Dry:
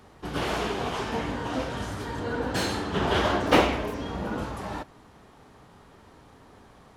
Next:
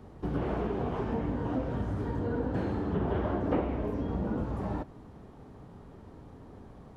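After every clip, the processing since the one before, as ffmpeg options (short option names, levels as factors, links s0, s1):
-filter_complex "[0:a]acrossover=split=2600[s0][s1];[s1]acompressor=threshold=0.00251:ratio=4:attack=1:release=60[s2];[s0][s2]amix=inputs=2:normalize=0,tiltshelf=f=810:g=8.5,acompressor=threshold=0.0447:ratio=3,volume=0.794"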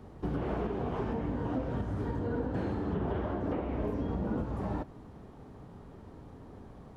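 -af "alimiter=limit=0.0668:level=0:latency=1:release=266"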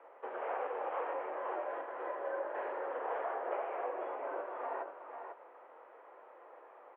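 -filter_complex "[0:a]asplit=2[s0][s1];[s1]aecho=0:1:496:0.447[s2];[s0][s2]amix=inputs=2:normalize=0,highpass=f=450:t=q:w=0.5412,highpass=f=450:t=q:w=1.307,lowpass=f=2500:t=q:w=0.5176,lowpass=f=2500:t=q:w=0.7071,lowpass=f=2500:t=q:w=1.932,afreqshift=81,volume=1.12"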